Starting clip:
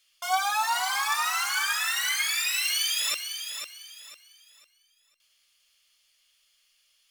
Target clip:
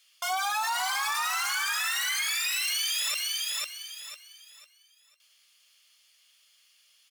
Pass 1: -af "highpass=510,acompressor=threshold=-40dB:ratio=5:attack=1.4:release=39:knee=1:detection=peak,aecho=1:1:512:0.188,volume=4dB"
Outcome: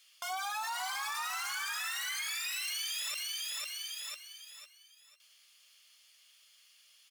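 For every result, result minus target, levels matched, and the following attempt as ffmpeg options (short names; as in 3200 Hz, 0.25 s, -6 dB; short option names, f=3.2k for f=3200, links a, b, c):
compressor: peak gain reduction +8 dB; echo-to-direct +7 dB
-af "highpass=510,acompressor=threshold=-30dB:ratio=5:attack=1.4:release=39:knee=1:detection=peak,aecho=1:1:512:0.188,volume=4dB"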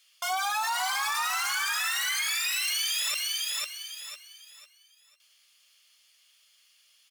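echo-to-direct +7 dB
-af "highpass=510,acompressor=threshold=-30dB:ratio=5:attack=1.4:release=39:knee=1:detection=peak,aecho=1:1:512:0.0841,volume=4dB"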